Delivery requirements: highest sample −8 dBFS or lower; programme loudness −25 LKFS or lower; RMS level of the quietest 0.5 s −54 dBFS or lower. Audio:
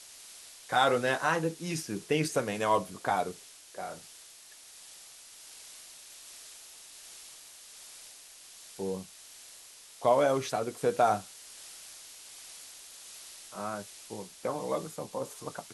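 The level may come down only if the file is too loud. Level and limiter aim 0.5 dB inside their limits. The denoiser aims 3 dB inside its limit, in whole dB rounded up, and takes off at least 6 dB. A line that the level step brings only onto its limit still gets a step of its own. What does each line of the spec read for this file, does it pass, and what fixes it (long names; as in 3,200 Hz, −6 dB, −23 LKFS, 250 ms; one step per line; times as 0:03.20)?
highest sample −12.0 dBFS: in spec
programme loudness −31.0 LKFS: in spec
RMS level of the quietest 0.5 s −53 dBFS: out of spec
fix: broadband denoise 6 dB, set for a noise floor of −53 dBFS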